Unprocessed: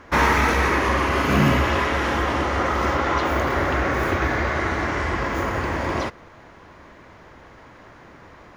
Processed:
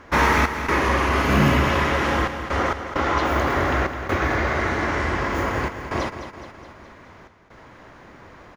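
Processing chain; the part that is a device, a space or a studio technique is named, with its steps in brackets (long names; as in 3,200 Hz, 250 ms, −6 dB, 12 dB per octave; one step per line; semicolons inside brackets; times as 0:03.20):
trance gate with a delay (gate pattern "xx.xxxxxxx.x.xx" 66 BPM; repeating echo 210 ms, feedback 56%, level −10 dB)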